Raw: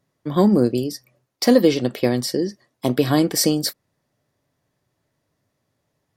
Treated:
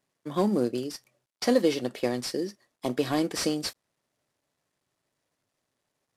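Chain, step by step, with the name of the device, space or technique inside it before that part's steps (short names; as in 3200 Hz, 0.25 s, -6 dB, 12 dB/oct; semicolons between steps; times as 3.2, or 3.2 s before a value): early wireless headset (HPF 280 Hz 6 dB/oct; CVSD 64 kbps); gain -6 dB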